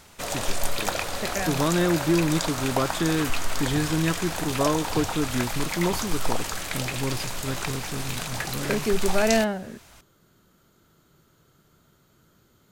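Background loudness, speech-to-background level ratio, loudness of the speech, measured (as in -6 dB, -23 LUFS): -30.0 LUFS, 2.5 dB, -27.5 LUFS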